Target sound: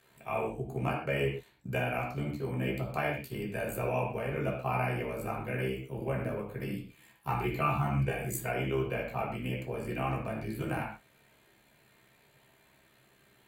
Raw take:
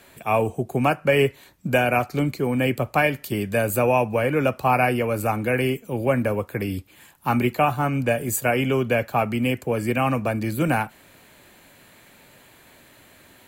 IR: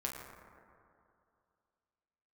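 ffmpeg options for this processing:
-filter_complex "[0:a]asettb=1/sr,asplit=3[link_01][link_02][link_03];[link_01]atrim=end=6.594[link_04];[link_02]atrim=start=6.59:end=8.46,asetpts=PTS-STARTPTS,afade=type=in:duration=0.004:curve=qsin,afade=type=out:start_time=1.866:duration=0.004:curve=qsin,aecho=1:1:6:0.93,atrim=end_sample=82467[link_05];[link_03]atrim=start=8.456[link_06];[link_04][link_05]acrossfade=duration=0.004:curve1=hsin:curve2=qsin[link_07];[link_07][link_06]acrossfade=duration=0.004:curve1=qsin:curve2=hsin,tremolo=f=67:d=0.919[link_08];[1:a]atrim=start_sample=2205,afade=type=out:start_time=0.33:duration=0.01,atrim=end_sample=14994,asetrate=88200,aresample=44100[link_09];[link_08][link_09]afir=irnorm=-1:irlink=0,volume=-4dB"

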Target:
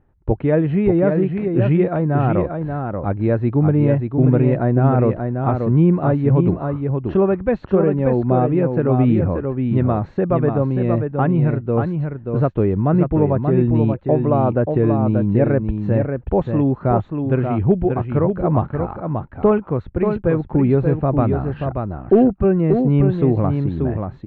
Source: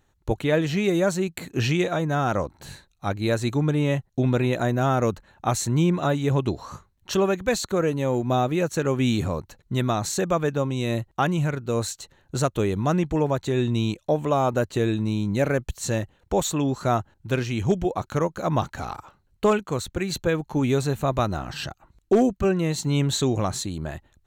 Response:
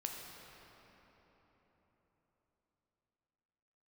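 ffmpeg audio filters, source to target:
-filter_complex "[0:a]lowpass=frequency=2400:width=0.5412,lowpass=frequency=2400:width=1.3066,tiltshelf=frequency=1100:gain=7.5,asplit=2[link_01][link_02];[link_02]aecho=0:1:583:0.531[link_03];[link_01][link_03]amix=inputs=2:normalize=0"

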